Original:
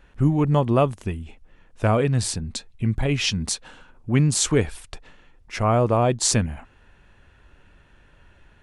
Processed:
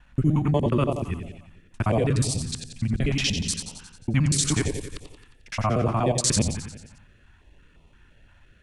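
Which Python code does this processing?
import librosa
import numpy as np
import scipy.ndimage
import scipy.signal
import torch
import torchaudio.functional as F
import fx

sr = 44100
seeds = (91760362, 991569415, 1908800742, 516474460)

p1 = fx.local_reverse(x, sr, ms=60.0)
p2 = p1 + fx.echo_feedback(p1, sr, ms=89, feedback_pct=58, wet_db=-8.5, dry=0)
p3 = fx.filter_held_notch(p2, sr, hz=5.8, low_hz=410.0, high_hz=1600.0)
y = p3 * 10.0 ** (-1.5 / 20.0)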